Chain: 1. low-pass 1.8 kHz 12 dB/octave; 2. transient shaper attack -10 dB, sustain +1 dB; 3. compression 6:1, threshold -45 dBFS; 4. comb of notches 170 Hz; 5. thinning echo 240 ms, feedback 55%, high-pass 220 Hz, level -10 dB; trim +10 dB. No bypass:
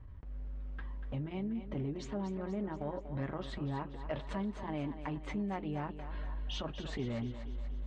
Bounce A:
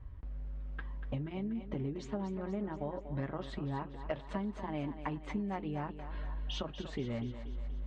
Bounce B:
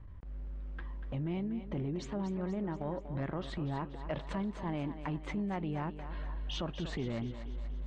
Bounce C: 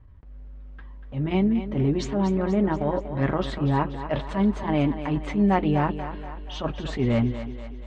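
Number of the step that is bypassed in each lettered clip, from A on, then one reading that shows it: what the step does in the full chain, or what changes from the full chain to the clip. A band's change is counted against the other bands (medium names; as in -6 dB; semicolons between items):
2, crest factor change +2.0 dB; 4, momentary loudness spread change +1 LU; 3, mean gain reduction 10.0 dB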